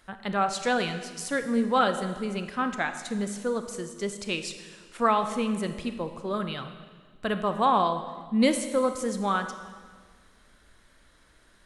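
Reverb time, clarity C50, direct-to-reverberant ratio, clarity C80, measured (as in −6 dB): 1.6 s, 9.5 dB, 8.0 dB, 11.0 dB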